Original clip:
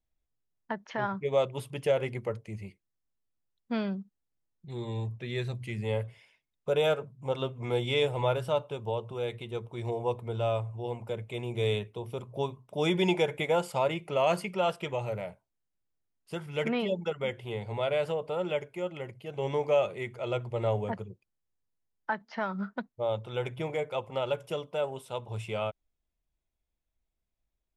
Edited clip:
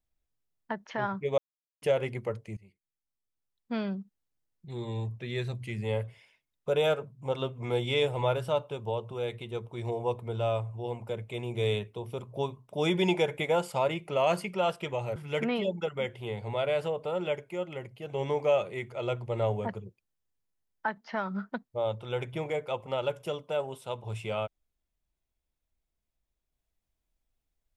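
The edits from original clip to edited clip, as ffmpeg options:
ffmpeg -i in.wav -filter_complex "[0:a]asplit=5[link_01][link_02][link_03][link_04][link_05];[link_01]atrim=end=1.38,asetpts=PTS-STARTPTS,afade=type=out:start_time=1.376:duration=0.004:curve=hsin[link_06];[link_02]atrim=start=1.38:end=1.82,asetpts=PTS-STARTPTS,volume=0[link_07];[link_03]atrim=start=1.82:end=2.57,asetpts=PTS-STARTPTS,afade=type=in:duration=0.004:curve=hsin,afade=type=out:start_time=0.746:duration=0.004:curve=hsin:silence=0.133352[link_08];[link_04]atrim=start=2.57:end=15.162,asetpts=PTS-STARTPTS,afade=type=in:duration=1.42:silence=0.133352[link_09];[link_05]atrim=start=16.398[link_10];[link_06][link_07][link_08][link_09]concat=n=4:v=0:a=1[link_11];[link_11][link_10]acrossfade=duration=0.004:curve1=hsin:curve2=hsin" out.wav

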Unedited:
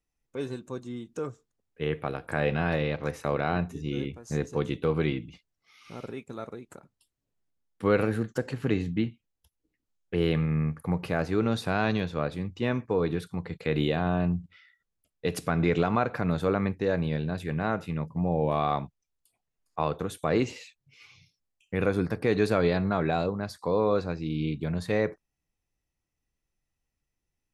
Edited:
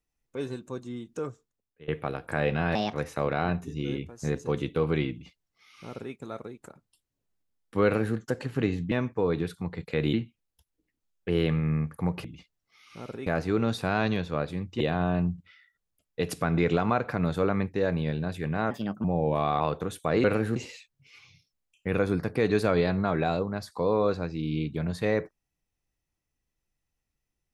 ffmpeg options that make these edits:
ffmpeg -i in.wav -filter_complex "[0:a]asplit=14[link_01][link_02][link_03][link_04][link_05][link_06][link_07][link_08][link_09][link_10][link_11][link_12][link_13][link_14];[link_01]atrim=end=1.88,asetpts=PTS-STARTPTS,afade=type=out:start_time=1.27:duration=0.61:silence=0.0707946[link_15];[link_02]atrim=start=1.88:end=2.754,asetpts=PTS-STARTPTS,afade=type=in:duration=0.004:curve=hsin:silence=0.0707946[link_16];[link_03]atrim=start=2.75:end=3.01,asetpts=PTS-STARTPTS,asetrate=62181,aresample=44100[link_17];[link_04]atrim=start=3.006:end=8.992[link_18];[link_05]atrim=start=12.638:end=13.862[link_19];[link_06]atrim=start=8.988:end=11.102[link_20];[link_07]atrim=start=5.188:end=6.212[link_21];[link_08]atrim=start=11.098:end=12.642[link_22];[link_09]atrim=start=13.858:end=17.764[link_23];[link_10]atrim=start=17.76:end=18.2,asetpts=PTS-STARTPTS,asetrate=57771,aresample=44100,atrim=end_sample=14812,asetpts=PTS-STARTPTS[link_24];[link_11]atrim=start=18.196:end=18.762[link_25];[link_12]atrim=start=19.788:end=20.432[link_26];[link_13]atrim=start=7.918:end=8.242[link_27];[link_14]atrim=start=20.428[link_28];[link_15][link_16]concat=n=2:v=0:a=1[link_29];[link_29][link_17]acrossfade=duration=0.004:curve1=hsin:curve2=hsin[link_30];[link_30][link_18]acrossfade=duration=0.004:curve1=hsin:curve2=hsin[link_31];[link_31][link_19]acrossfade=duration=0.004:curve1=hsin:curve2=hsin[link_32];[link_32][link_20]acrossfade=duration=0.004:curve1=hsin:curve2=hsin[link_33];[link_33][link_21]acrossfade=duration=0.004:curve1=hsin:curve2=hsin[link_34];[link_34][link_22]acrossfade=duration=0.004:curve1=hsin:curve2=hsin[link_35];[link_35][link_23]acrossfade=duration=0.004:curve1=hsin:curve2=hsin[link_36];[link_36][link_24]acrossfade=duration=0.004:curve1=hsin:curve2=hsin[link_37];[link_37][link_25]acrossfade=duration=0.004:curve1=hsin:curve2=hsin[link_38];[link_38][link_26]acrossfade=duration=0.004:curve1=hsin:curve2=hsin[link_39];[link_39][link_27]acrossfade=duration=0.004:curve1=hsin:curve2=hsin[link_40];[link_40][link_28]acrossfade=duration=0.004:curve1=hsin:curve2=hsin" out.wav

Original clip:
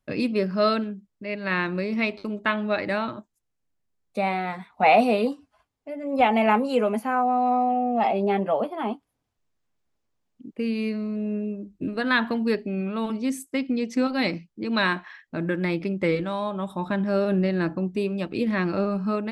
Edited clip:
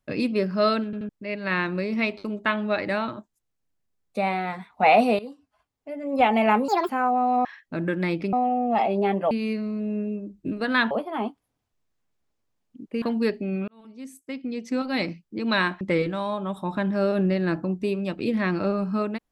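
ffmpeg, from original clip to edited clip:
ffmpeg -i in.wav -filter_complex "[0:a]asplit=14[link_01][link_02][link_03][link_04][link_05][link_06][link_07][link_08][link_09][link_10][link_11][link_12][link_13][link_14];[link_01]atrim=end=0.932[link_15];[link_02]atrim=start=0.848:end=0.932[link_16];[link_03]atrim=start=0.848:end=0.932[link_17];[link_04]atrim=start=1.088:end=5.19,asetpts=PTS-STARTPTS,afade=type=out:start_time=4.098:duration=0.004:curve=hsin:silence=0.133352[link_18];[link_05]atrim=start=5.19:end=6.684,asetpts=PTS-STARTPTS,afade=type=in:duration=0.75:silence=0.133352[link_19];[link_06]atrim=start=6.68:end=7.02,asetpts=PTS-STARTPTS,asetrate=71883,aresample=44100[link_20];[link_07]atrim=start=7.016:end=7.582[link_21];[link_08]atrim=start=15.058:end=15.942[link_22];[link_09]atrim=start=7.578:end=8.562[link_23];[link_10]atrim=start=10.668:end=12.272[link_24];[link_11]atrim=start=8.558:end=10.672[link_25];[link_12]atrim=start=12.268:end=12.93,asetpts=PTS-STARTPTS,afade=type=out:start_time=0.658:duration=0.004:curve=hsin[link_26];[link_13]atrim=start=12.93:end=15.062,asetpts=PTS-STARTPTS,afade=type=in:duration=1.57[link_27];[link_14]atrim=start=15.938[link_28];[link_15][link_16]acrossfade=duration=0.004:curve1=hsin:curve2=hsin[link_29];[link_29][link_17]acrossfade=duration=0.004:curve1=hsin:curve2=hsin[link_30];[link_18][link_19]concat=n=2:v=0:a=1[link_31];[link_30][link_31]acrossfade=duration=0.004:curve1=hsin:curve2=hsin[link_32];[link_32][link_20]acrossfade=duration=0.004:curve1=hsin:curve2=hsin[link_33];[link_33][link_21]acrossfade=duration=0.004:curve1=hsin:curve2=hsin[link_34];[link_34][link_22]acrossfade=duration=0.004:curve1=hsin:curve2=hsin[link_35];[link_35][link_23]acrossfade=duration=0.004:curve1=hsin:curve2=hsin[link_36];[link_36][link_24]acrossfade=duration=0.004:curve1=hsin:curve2=hsin[link_37];[link_37][link_25]acrossfade=duration=0.004:curve1=hsin:curve2=hsin[link_38];[link_26][link_27]concat=n=2:v=0:a=1[link_39];[link_38][link_39]acrossfade=duration=0.004:curve1=hsin:curve2=hsin[link_40];[link_40][link_28]acrossfade=duration=0.004:curve1=hsin:curve2=hsin" out.wav

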